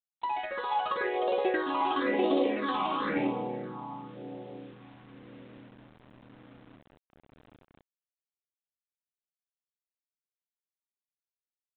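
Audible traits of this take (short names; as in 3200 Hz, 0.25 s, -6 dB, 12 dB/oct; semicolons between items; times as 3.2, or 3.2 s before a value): phasing stages 6, 0.96 Hz, lowest notch 460–1700 Hz; a quantiser's noise floor 10-bit, dither none; G.726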